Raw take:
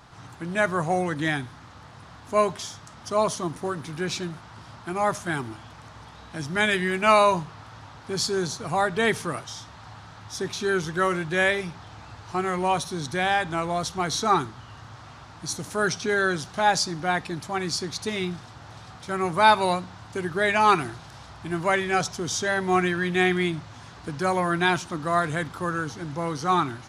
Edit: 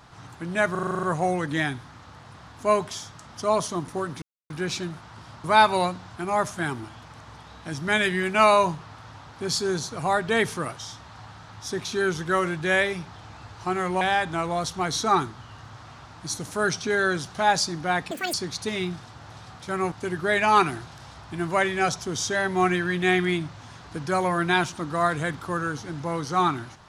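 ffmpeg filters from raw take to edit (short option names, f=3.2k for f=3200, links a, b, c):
-filter_complex "[0:a]asplit=16[a][b][c][d][e][f][g][h][i][j][k][l][m][n][o][p];[a]atrim=end=0.752[q];[b]atrim=start=0.708:end=0.752[r];[c]atrim=start=0.708:end=0.752[s];[d]atrim=start=0.708:end=0.752[t];[e]atrim=start=0.708:end=0.752[u];[f]atrim=start=0.708:end=0.752[v];[g]atrim=start=0.708:end=0.752[w];[h]atrim=start=0.708:end=0.752[x];[i]atrim=start=0.708:end=3.9,asetpts=PTS-STARTPTS,afade=t=out:st=3.188:d=0.004:c=hsin,apad=pad_dur=0.28[y];[j]atrim=start=3.9:end=4.842,asetpts=PTS-STARTPTS,afade=t=in:d=0.004:c=hsin[z];[k]atrim=start=19.318:end=20.042[aa];[l]atrim=start=4.838:end=12.692[ab];[m]atrim=start=13.198:end=17.304[ac];[n]atrim=start=17.3:end=17.74,asetpts=PTS-STARTPTS,asetrate=85554,aresample=44100,atrim=end_sample=10002,asetpts=PTS-STARTPTS[ad];[o]atrim=start=17.736:end=19.322[ae];[p]atrim=start=20.038[af];[q][r]acrossfade=d=0.004:c1=hsin:c2=hsin[ag];[ag][s]acrossfade=d=0.004:c1=hsin:c2=hsin[ah];[ah][t]acrossfade=d=0.004:c1=hsin:c2=hsin[ai];[ai][u]acrossfade=d=0.004:c1=hsin:c2=hsin[aj];[aj][v]acrossfade=d=0.004:c1=hsin:c2=hsin[ak];[ak][w]acrossfade=d=0.004:c1=hsin:c2=hsin[al];[al][x]acrossfade=d=0.004:c1=hsin:c2=hsin[am];[y][z]concat=n=2:v=0:a=1[an];[am][an]acrossfade=d=0.004:c1=hsin:c2=hsin[ao];[ao][aa]acrossfade=d=0.004:c1=hsin:c2=hsin[ap];[ap][ab]acrossfade=d=0.004:c1=hsin:c2=hsin[aq];[aq][ac]acrossfade=d=0.004:c1=hsin:c2=hsin[ar];[ar][ad]acrossfade=d=0.004:c1=hsin:c2=hsin[as];[as][ae]acrossfade=d=0.004:c1=hsin:c2=hsin[at];[at][af]acrossfade=d=0.004:c1=hsin:c2=hsin"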